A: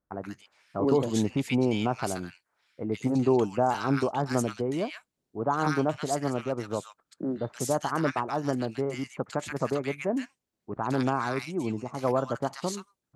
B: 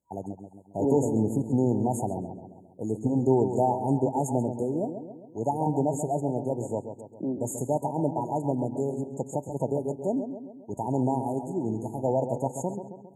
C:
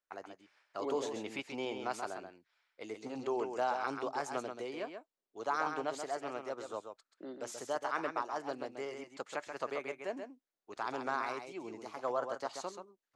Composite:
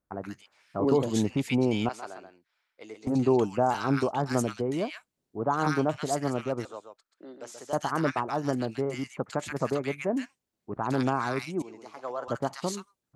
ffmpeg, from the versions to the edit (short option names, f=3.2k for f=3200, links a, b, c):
-filter_complex "[2:a]asplit=3[a][b][c];[0:a]asplit=4[d][e][f][g];[d]atrim=end=1.892[h];[a]atrim=start=1.888:end=3.072[i];[e]atrim=start=3.068:end=6.652[j];[b]atrim=start=6.648:end=7.732[k];[f]atrim=start=7.728:end=11.622[l];[c]atrim=start=11.618:end=12.282[m];[g]atrim=start=12.278[n];[h][i]acrossfade=d=0.004:c1=hsin:c2=hsin[o];[o][j]acrossfade=d=0.004:c1=hsin:c2=hsin[p];[p][k]acrossfade=d=0.004:c1=hsin:c2=hsin[q];[q][l]acrossfade=d=0.004:c1=hsin:c2=hsin[r];[r][m]acrossfade=d=0.004:c1=hsin:c2=hsin[s];[s][n]acrossfade=d=0.004:c1=hsin:c2=hsin"